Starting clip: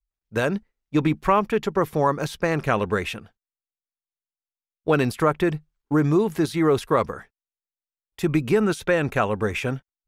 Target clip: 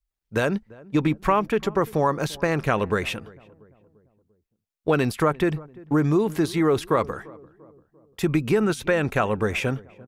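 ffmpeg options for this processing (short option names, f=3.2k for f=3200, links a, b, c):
-filter_complex "[0:a]acompressor=threshold=-25dB:ratio=1.5,asplit=2[a][b];[b]adelay=344,lowpass=f=920:p=1,volume=-21dB,asplit=2[c][d];[d]adelay=344,lowpass=f=920:p=1,volume=0.52,asplit=2[e][f];[f]adelay=344,lowpass=f=920:p=1,volume=0.52,asplit=2[g][h];[h]adelay=344,lowpass=f=920:p=1,volume=0.52[i];[c][e][g][i]amix=inputs=4:normalize=0[j];[a][j]amix=inputs=2:normalize=0,volume=2.5dB"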